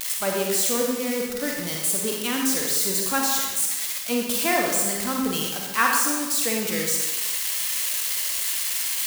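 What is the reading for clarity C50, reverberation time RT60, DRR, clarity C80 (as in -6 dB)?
1.0 dB, 1.2 s, -0.5 dB, 3.0 dB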